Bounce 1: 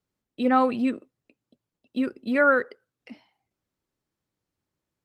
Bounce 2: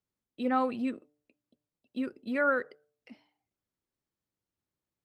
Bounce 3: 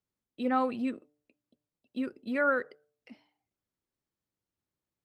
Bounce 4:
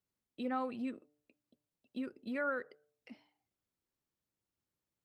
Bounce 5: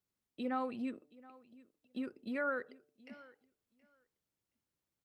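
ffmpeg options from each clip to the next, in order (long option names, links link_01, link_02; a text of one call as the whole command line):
ffmpeg -i in.wav -af "bandreject=frequency=148.2:width_type=h:width=4,bandreject=frequency=296.4:width_type=h:width=4,bandreject=frequency=444.6:width_type=h:width=4,bandreject=frequency=592.8:width_type=h:width=4,bandreject=frequency=741:width_type=h:width=4,bandreject=frequency=889.2:width_type=h:width=4,volume=-7.5dB" out.wav
ffmpeg -i in.wav -af anull out.wav
ffmpeg -i in.wav -af "acompressor=threshold=-44dB:ratio=1.5,volume=-1.5dB" out.wav
ffmpeg -i in.wav -af "aecho=1:1:723|1446:0.0841|0.0126" out.wav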